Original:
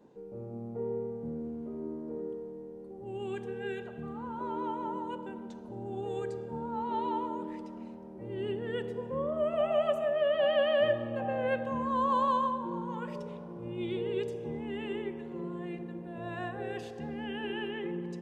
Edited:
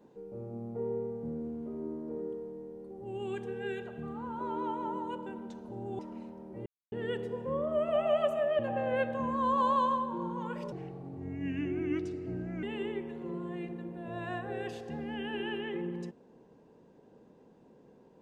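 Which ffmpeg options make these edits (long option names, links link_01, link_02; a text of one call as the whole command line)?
ffmpeg -i in.wav -filter_complex "[0:a]asplit=7[link_01][link_02][link_03][link_04][link_05][link_06][link_07];[link_01]atrim=end=5.992[link_08];[link_02]atrim=start=7.638:end=8.31,asetpts=PTS-STARTPTS,afade=type=out:start_time=0.668:duration=0.004:curve=hsin[link_09];[link_03]atrim=start=8.31:end=8.57,asetpts=PTS-STARTPTS,volume=0[link_10];[link_04]atrim=start=8.57:end=10.242,asetpts=PTS-STARTPTS,afade=type=in:duration=0.004:curve=hsin[link_11];[link_05]atrim=start=11.108:end=13.244[link_12];[link_06]atrim=start=13.24:end=14.73,asetpts=PTS-STARTPTS,asetrate=34398,aresample=44100,atrim=end_sample=84242,asetpts=PTS-STARTPTS[link_13];[link_07]atrim=start=14.726[link_14];[link_09][link_10][link_11]concat=n=3:v=0:a=1[link_15];[link_08][link_15]acrossfade=duration=0.004:curve1=hsin:curve2=hsin[link_16];[link_16][link_12]acrossfade=duration=0.004:curve1=hsin:curve2=hsin[link_17];[link_17][link_13]acrossfade=duration=0.004:curve1=hsin:curve2=hsin[link_18];[link_18][link_14]acrossfade=duration=0.004:curve1=hsin:curve2=hsin" out.wav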